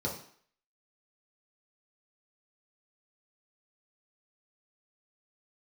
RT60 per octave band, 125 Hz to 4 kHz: 0.45, 0.50, 0.50, 0.60, 0.60, 0.55 seconds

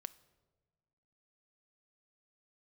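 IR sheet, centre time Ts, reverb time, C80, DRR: 3 ms, 1.5 s, 21.0 dB, 13.5 dB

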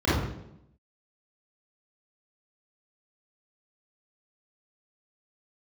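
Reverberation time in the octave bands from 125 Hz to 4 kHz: 0.90, 1.0, 0.85, 0.75, 0.65, 0.65 seconds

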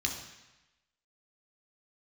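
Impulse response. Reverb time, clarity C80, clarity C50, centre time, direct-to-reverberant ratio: 1.0 s, 8.5 dB, 6.0 dB, 30 ms, 0.5 dB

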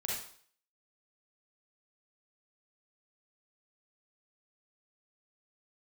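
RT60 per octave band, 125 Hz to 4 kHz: 0.45, 0.50, 0.50, 0.55, 0.50, 0.55 seconds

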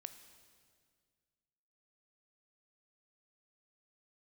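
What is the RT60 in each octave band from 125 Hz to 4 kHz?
2.3, 2.2, 2.0, 1.8, 1.8, 1.8 seconds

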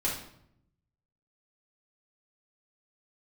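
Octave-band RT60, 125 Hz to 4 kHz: 1.3, 1.0, 0.75, 0.65, 0.60, 0.55 seconds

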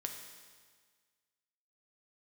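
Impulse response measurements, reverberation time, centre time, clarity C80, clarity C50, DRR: 1.6 s, 40 ms, 7.0 dB, 5.5 dB, 3.0 dB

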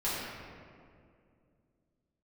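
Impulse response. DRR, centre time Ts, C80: −11.5 dB, 132 ms, −0.5 dB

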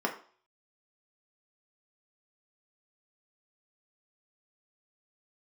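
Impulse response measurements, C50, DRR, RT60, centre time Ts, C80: 11.0 dB, 0.0 dB, 0.45 s, 14 ms, 14.5 dB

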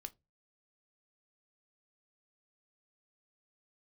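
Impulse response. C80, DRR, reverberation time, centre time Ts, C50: 34.0 dB, 8.5 dB, 0.20 s, 3 ms, 24.5 dB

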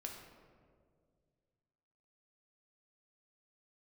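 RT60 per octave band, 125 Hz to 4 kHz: 2.9, 2.4, 2.4, 1.7, 1.3, 0.90 seconds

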